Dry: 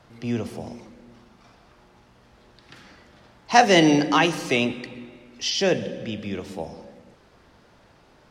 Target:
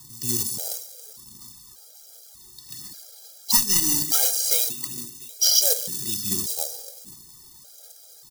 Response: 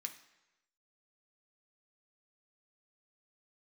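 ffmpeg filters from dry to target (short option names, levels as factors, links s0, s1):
-filter_complex "[0:a]bandreject=f=1500:w=15,aecho=1:1:691:0.0631,aphaser=in_gain=1:out_gain=1:delay=2.5:decay=0.46:speed=1.4:type=sinusoidal,acrusher=bits=2:mode=log:mix=0:aa=0.000001,aexciter=amount=13.8:drive=5.8:freq=3900,asettb=1/sr,asplit=3[s0][s1][s2];[s0]atrim=end=3.574[s3];[s1]atrim=start=3.57:end=5.56,asetpts=PTS-STARTPTS,afade=t=in:d=0.004:c=qsin,afade=t=out:st=1.986:d=0.004:c=qsin,aeval=exprs='(tanh(0.251*val(0)+0.6)-tanh(0.6))/0.251':c=same[s4];[s2]atrim=start=5.556[s5];[s3][s4]acrossfade=d=0.004:c1=hsin:c2=qsin[s6];[s6][s5]acrossfade=d=0.004:c1=qsin:c2=hsin,highshelf=f=7200:g=4,acompressor=threshold=0.562:ratio=5,equalizer=f=140:w=2.6:g=8,afftfilt=real='re*gt(sin(2*PI*0.85*pts/sr)*(1-2*mod(floor(b*sr/1024/420),2)),0)':imag='im*gt(sin(2*PI*0.85*pts/sr)*(1-2*mod(floor(b*sr/1024/420),2)),0)':win_size=1024:overlap=0.75,volume=0.447"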